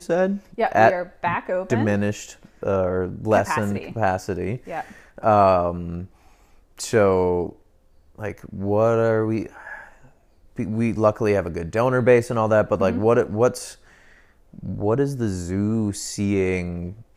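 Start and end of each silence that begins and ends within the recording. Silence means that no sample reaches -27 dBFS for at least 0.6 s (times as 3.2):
6.03–6.8
7.49–8.2
9.73–10.59
13.69–14.59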